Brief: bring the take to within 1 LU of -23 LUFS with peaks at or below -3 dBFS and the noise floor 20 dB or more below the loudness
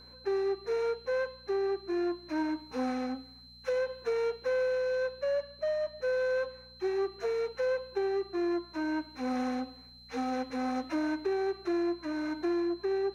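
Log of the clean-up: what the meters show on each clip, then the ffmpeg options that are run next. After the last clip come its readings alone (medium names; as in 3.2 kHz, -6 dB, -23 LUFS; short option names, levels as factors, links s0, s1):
hum 60 Hz; highest harmonic 240 Hz; hum level -57 dBFS; steady tone 4.1 kHz; tone level -52 dBFS; loudness -32.5 LUFS; peak level -22.0 dBFS; loudness target -23.0 LUFS
-> -af "bandreject=f=60:t=h:w=4,bandreject=f=120:t=h:w=4,bandreject=f=180:t=h:w=4,bandreject=f=240:t=h:w=4"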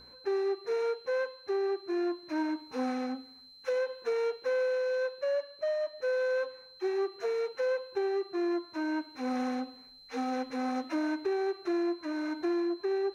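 hum not found; steady tone 4.1 kHz; tone level -52 dBFS
-> -af "bandreject=f=4100:w=30"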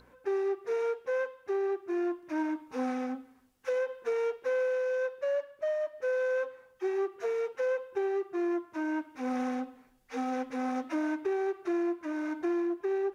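steady tone not found; loudness -32.5 LUFS; peak level -22.5 dBFS; loudness target -23.0 LUFS
-> -af "volume=2.99"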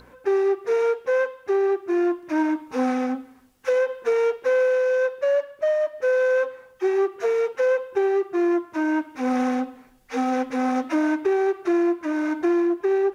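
loudness -23.0 LUFS; peak level -13.0 dBFS; noise floor -52 dBFS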